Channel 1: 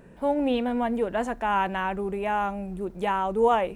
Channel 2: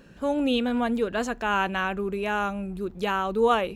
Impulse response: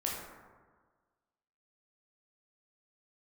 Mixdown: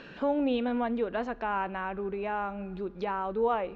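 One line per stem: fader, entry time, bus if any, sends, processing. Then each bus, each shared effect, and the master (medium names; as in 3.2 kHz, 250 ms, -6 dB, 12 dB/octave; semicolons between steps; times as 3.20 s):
-10.5 dB, 0.00 s, no send, none
+2.0 dB, 0.00 s, send -23.5 dB, high-pass 220 Hz 12 dB/octave; compression 2:1, threshold -37 dBFS, peak gain reduction 11 dB; auto duck -8 dB, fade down 1.75 s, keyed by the first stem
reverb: on, RT60 1.5 s, pre-delay 13 ms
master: low-pass 4.2 kHz 24 dB/octave; bass shelf 190 Hz +4 dB; tape noise reduction on one side only encoder only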